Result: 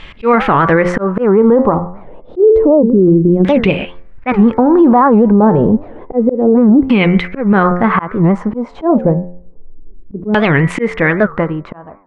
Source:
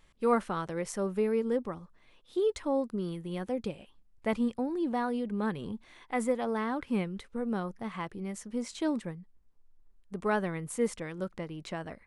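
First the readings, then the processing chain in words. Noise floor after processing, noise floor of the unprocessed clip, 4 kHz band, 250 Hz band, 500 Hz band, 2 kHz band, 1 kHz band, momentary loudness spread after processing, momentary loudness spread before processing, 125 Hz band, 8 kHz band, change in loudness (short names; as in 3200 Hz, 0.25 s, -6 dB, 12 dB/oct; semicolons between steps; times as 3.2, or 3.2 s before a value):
-36 dBFS, -63 dBFS, +17.0 dB, +22.0 dB, +20.0 dB, +22.5 dB, +21.0 dB, 11 LU, 10 LU, +25.0 dB, n/a, +21.5 dB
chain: ending faded out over 1.24 s; de-hum 88.73 Hz, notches 26; LFO low-pass saw down 0.29 Hz 280–3000 Hz; auto swell 0.315 s; maximiser +29.5 dB; record warp 78 rpm, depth 250 cents; gain -1 dB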